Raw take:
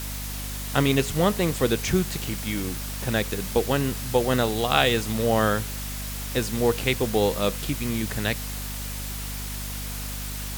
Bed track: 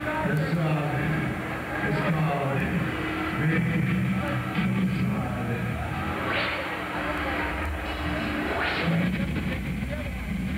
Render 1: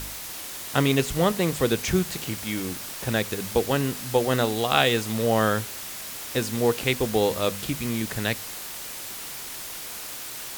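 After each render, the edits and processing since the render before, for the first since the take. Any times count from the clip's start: de-hum 50 Hz, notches 5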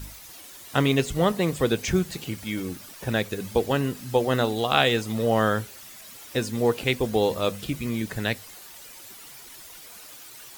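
denoiser 11 dB, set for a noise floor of -37 dBFS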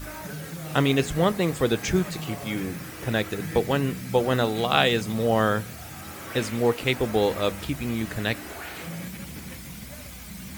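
add bed track -11.5 dB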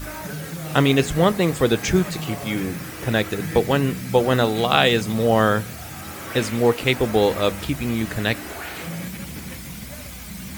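gain +4.5 dB; limiter -1 dBFS, peak gain reduction 1.5 dB

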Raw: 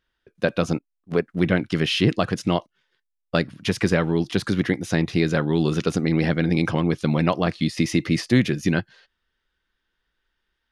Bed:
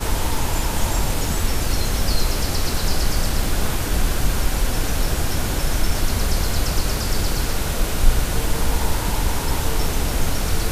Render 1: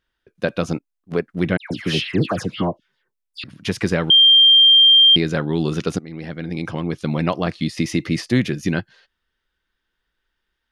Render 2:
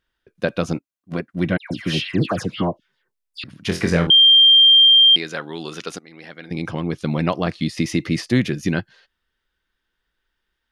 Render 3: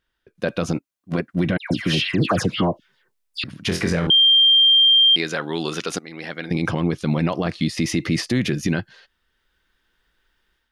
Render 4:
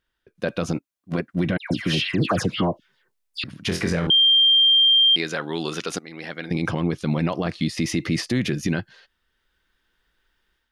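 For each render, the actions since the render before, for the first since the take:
1.57–3.44 dispersion lows, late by 0.137 s, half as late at 2000 Hz; 4.1–5.16 bleep 3180 Hz -7.5 dBFS; 5.99–7.28 fade in, from -17.5 dB
0.74–2.22 notch comb 430 Hz; 3.67–4.07 flutter echo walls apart 4 m, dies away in 0.29 s; 4.86–6.51 HPF 980 Hz 6 dB/oct
AGC gain up to 8 dB; limiter -10.5 dBFS, peak gain reduction 9 dB
gain -2 dB

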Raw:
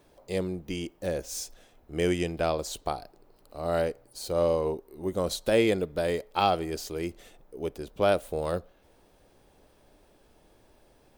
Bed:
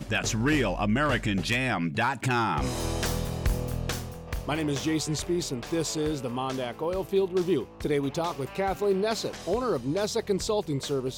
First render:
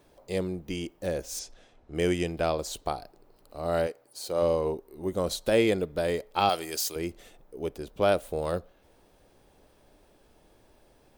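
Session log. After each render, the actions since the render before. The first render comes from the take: 1.39–1.95 LPF 6300 Hz; 3.86–4.41 HPF 550 Hz -> 230 Hz 6 dB/oct; 6.49–6.96 tilt +3.5 dB/oct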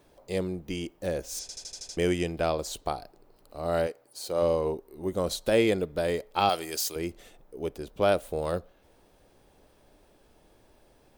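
1.41 stutter in place 0.08 s, 7 plays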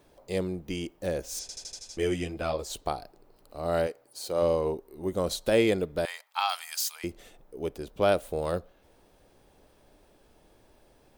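1.79–2.7 ensemble effect; 6.05–7.04 steep high-pass 860 Hz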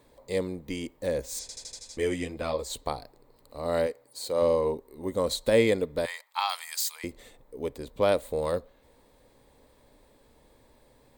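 ripple EQ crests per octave 1, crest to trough 7 dB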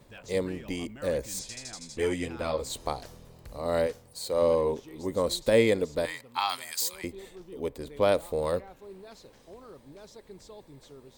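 add bed -21 dB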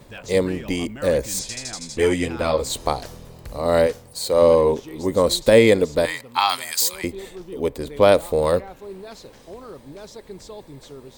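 gain +9.5 dB; limiter -2 dBFS, peak gain reduction 2 dB

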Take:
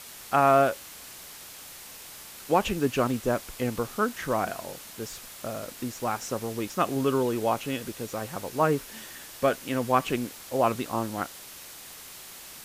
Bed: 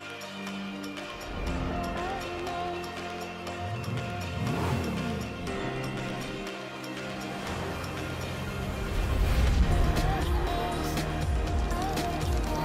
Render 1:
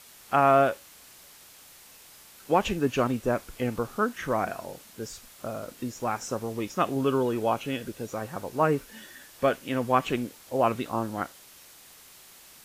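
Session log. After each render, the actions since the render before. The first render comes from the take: noise print and reduce 7 dB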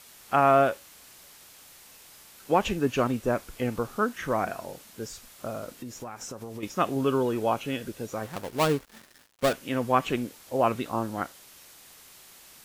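5.72–6.63 compressor 12:1, threshold -34 dBFS; 8.23–9.53 switching dead time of 0.21 ms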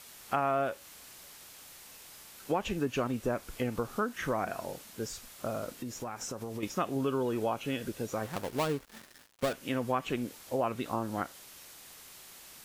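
compressor 3:1, threshold -29 dBFS, peak gain reduction 10 dB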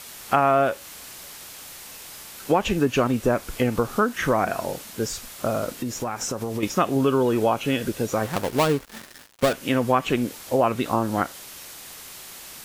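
gain +10.5 dB

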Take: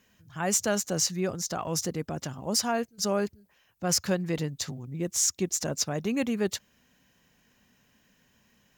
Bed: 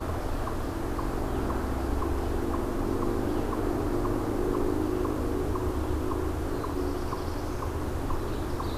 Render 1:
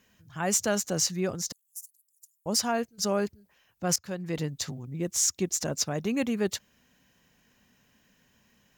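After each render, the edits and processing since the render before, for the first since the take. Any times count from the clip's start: 1.52–2.46 inverse Chebyshev high-pass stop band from 1800 Hz, stop band 80 dB; 3.96–4.45 fade in, from -21.5 dB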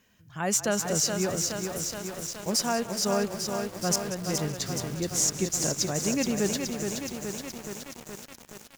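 frequency-shifting echo 0.188 s, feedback 61%, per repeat -32 Hz, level -14 dB; lo-fi delay 0.422 s, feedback 80%, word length 7-bit, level -5 dB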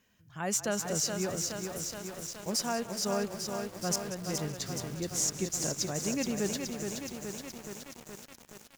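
gain -5 dB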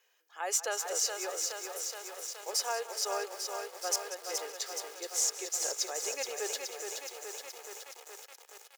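steep high-pass 460 Hz 36 dB/oct; comb 2.4 ms, depth 43%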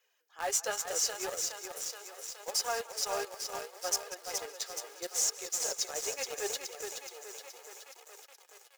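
flange 0.74 Hz, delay 1.4 ms, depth 8.2 ms, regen +29%; in parallel at -6 dB: bit-crush 6-bit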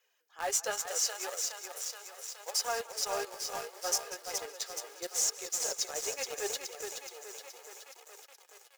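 0.87–2.65 HPF 510 Hz; 3.26–4.22 doubler 19 ms -5 dB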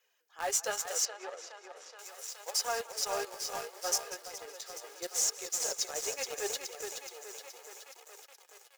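1.05–1.99 tape spacing loss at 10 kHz 24 dB; 4.15–5.01 compressor 12:1, threshold -38 dBFS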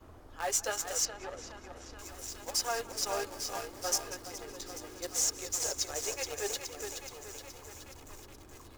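add bed -22.5 dB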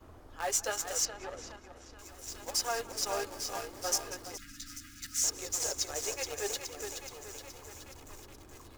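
1.56–2.27 gain -4 dB; 4.37–5.24 Chebyshev band-stop 290–1300 Hz, order 5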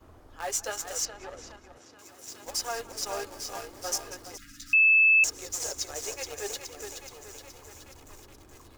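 1.77–2.45 HPF 110 Hz 24 dB/oct; 4.73–5.24 bleep 2620 Hz -16 dBFS

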